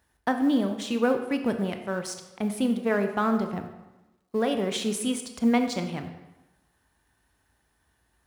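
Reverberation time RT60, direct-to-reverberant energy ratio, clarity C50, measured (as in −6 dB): 1.0 s, 6.0 dB, 8.0 dB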